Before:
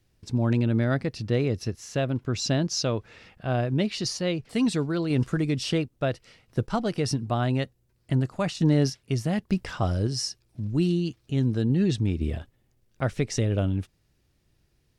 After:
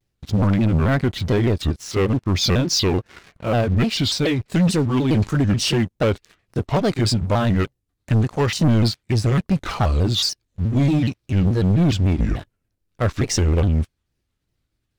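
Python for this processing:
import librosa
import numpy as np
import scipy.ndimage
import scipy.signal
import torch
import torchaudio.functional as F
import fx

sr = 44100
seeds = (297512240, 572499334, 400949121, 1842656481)

y = fx.pitch_ramps(x, sr, semitones=-5.5, every_ms=426)
y = fx.leveller(y, sr, passes=3)
y = fx.vibrato_shape(y, sr, shape='square', rate_hz=3.4, depth_cents=160.0)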